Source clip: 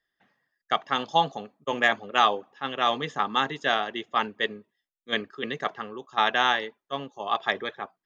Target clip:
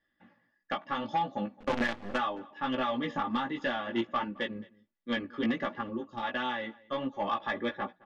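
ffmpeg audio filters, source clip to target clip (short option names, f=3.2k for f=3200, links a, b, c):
-filter_complex "[0:a]acompressor=threshold=-29dB:ratio=16,equalizer=f=140:w=0.73:g=12.5,aecho=1:1:3.5:0.8,asoftclip=type=tanh:threshold=-22dB,asettb=1/sr,asplit=3[a][b][c];[a]atrim=end=5.814[d];[b]atrim=start=5.81:end=6.23,asetpts=PTS-STARTPTS,afade=t=in:d=0.004:c=qsin,afade=t=out:st=0.416:d=0.004:c=qsin,equalizer=f=1.6k:w=0.68:g=-12.5[e];[c]atrim=start=6.226[f];[d][e]acrossfade=d=0.004:c1=hsin:c2=qsin[g];[g][f]acrossfade=d=0.004:c1=qsin:c2=hsin,flanger=delay=15.5:depth=2.1:speed=1.4,asoftclip=type=hard:threshold=-27dB,asplit=3[h][i][j];[h]afade=t=out:st=1.58:d=0.02[k];[i]acrusher=bits=6:dc=4:mix=0:aa=0.000001,afade=t=in:st=1.58:d=0.02,afade=t=out:st=2.17:d=0.02[l];[j]afade=t=in:st=2.17:d=0.02[m];[k][l][m]amix=inputs=3:normalize=0,lowpass=3.1k,asplit=2[n][o];[o]adelay=215.7,volume=-23dB,highshelf=f=4k:g=-4.85[p];[n][p]amix=inputs=2:normalize=0,volume=4dB"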